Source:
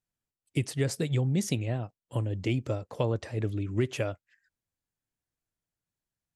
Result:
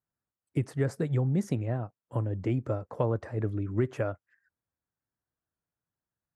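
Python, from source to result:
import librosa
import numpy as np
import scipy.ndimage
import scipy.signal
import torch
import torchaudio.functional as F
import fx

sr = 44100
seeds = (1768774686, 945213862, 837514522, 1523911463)

y = scipy.signal.sosfilt(scipy.signal.butter(2, 51.0, 'highpass', fs=sr, output='sos'), x)
y = fx.high_shelf_res(y, sr, hz=2100.0, db=-12.0, q=1.5)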